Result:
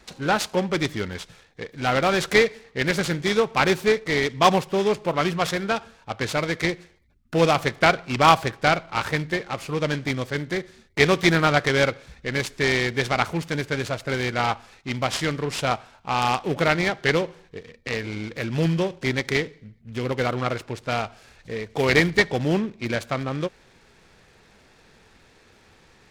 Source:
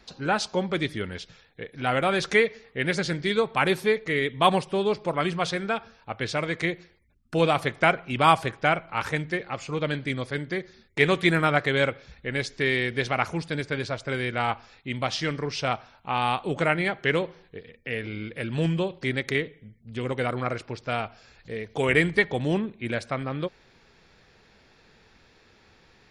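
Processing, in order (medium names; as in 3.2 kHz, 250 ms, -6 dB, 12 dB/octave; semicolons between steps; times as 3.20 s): delay time shaken by noise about 1.8 kHz, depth 0.034 ms; trim +3 dB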